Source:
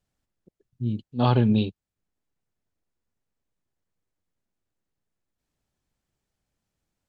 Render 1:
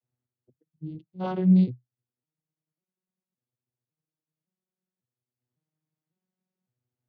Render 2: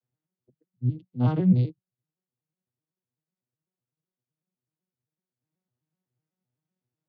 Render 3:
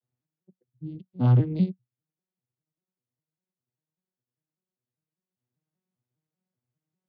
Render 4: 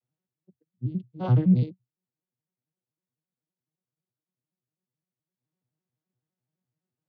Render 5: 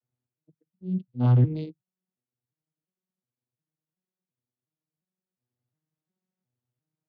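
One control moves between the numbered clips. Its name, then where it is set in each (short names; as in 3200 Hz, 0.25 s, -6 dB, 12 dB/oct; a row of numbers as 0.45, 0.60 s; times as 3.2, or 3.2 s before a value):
arpeggiated vocoder, a note every: 555, 126, 198, 85, 357 ms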